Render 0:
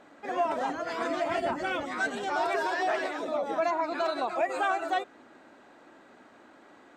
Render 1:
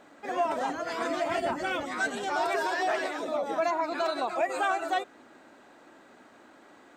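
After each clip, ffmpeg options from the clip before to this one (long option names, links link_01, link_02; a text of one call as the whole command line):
ffmpeg -i in.wav -af "highshelf=frequency=6500:gain=7.5" out.wav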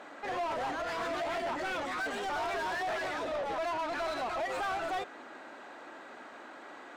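ffmpeg -i in.wav -filter_complex "[0:a]asoftclip=type=tanh:threshold=-21dB,asplit=2[link_01][link_02];[link_02]highpass=frequency=720:poles=1,volume=23dB,asoftclip=type=tanh:threshold=-21.5dB[link_03];[link_01][link_03]amix=inputs=2:normalize=0,lowpass=frequency=2600:poles=1,volume=-6dB,volume=-7dB" out.wav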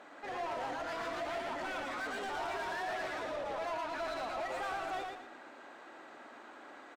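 ffmpeg -i in.wav -af "aecho=1:1:114|228|342|456:0.631|0.202|0.0646|0.0207,volume=-5.5dB" out.wav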